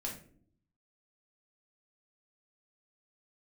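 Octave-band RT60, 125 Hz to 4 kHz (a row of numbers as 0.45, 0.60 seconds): 1.0, 0.90, 0.70, 0.40, 0.40, 0.30 seconds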